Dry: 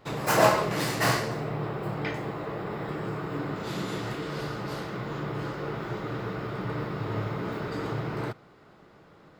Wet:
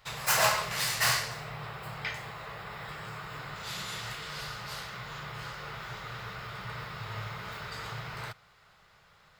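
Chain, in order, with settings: amplifier tone stack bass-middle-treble 10-0-10; trim +5 dB

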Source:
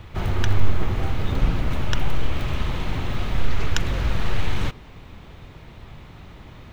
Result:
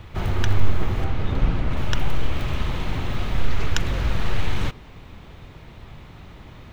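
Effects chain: 1.04–1.77 s: low-pass 3.5 kHz 6 dB/octave

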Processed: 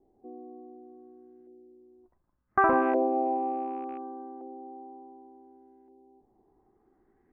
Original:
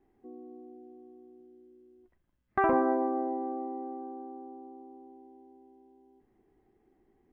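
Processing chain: rattle on loud lows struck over -45 dBFS, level -36 dBFS; LFO low-pass saw up 0.68 Hz 590–1800 Hz

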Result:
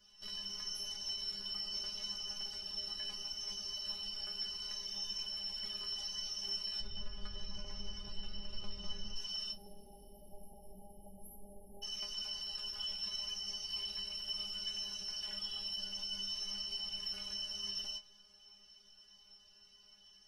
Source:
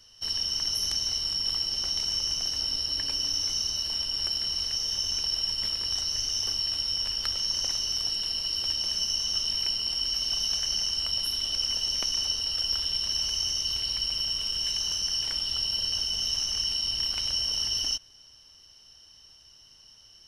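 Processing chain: 6.80–9.16 s: RIAA curve playback; 9.52–11.82 s: spectral selection erased 890–10000 Hz; treble shelf 4.5 kHz -6.5 dB; peak limiter -28 dBFS, peak gain reduction 10.5 dB; inharmonic resonator 200 Hz, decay 0.27 s, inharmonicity 0.002; two-slope reverb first 0.26 s, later 5 s, from -19 dB, DRR 17.5 dB; trim +6.5 dB

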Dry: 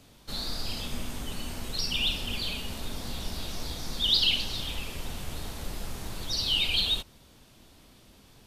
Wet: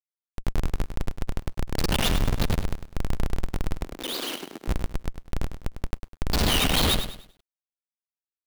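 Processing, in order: level rider gain up to 4 dB; Schmitt trigger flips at -22 dBFS; 3.83–4.68 s: ladder high-pass 250 Hz, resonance 45%; crossover distortion -58.5 dBFS; bit-crushed delay 101 ms, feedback 35%, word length 10-bit, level -9.5 dB; trim +6.5 dB

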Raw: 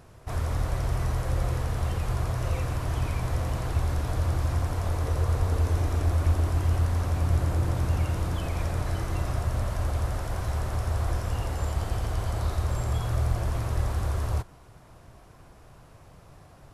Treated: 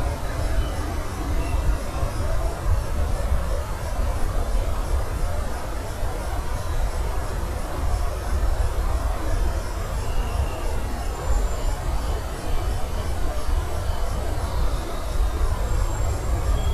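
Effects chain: frequency shift -35 Hz; Paulstretch 4×, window 0.05 s, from 8.80 s; trim +4.5 dB

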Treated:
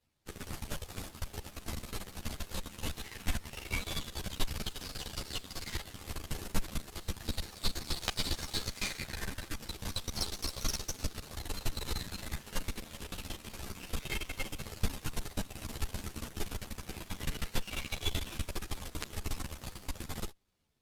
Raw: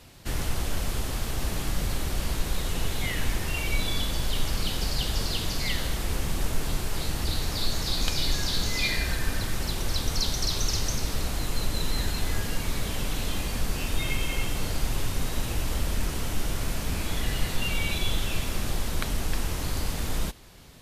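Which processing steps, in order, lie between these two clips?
Chebyshev shaper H 3 -19 dB, 6 -24 dB, 7 -20 dB, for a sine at -6 dBFS; three-phase chorus; trim +3 dB

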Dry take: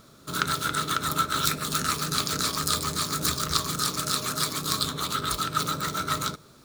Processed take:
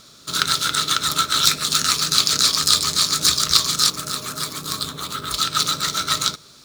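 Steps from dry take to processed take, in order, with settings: peaking EQ 4.8 kHz +14.5 dB 2.4 oct, from 3.90 s +2.5 dB, from 5.34 s +14.5 dB; short-mantissa float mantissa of 2-bit; trim -1 dB

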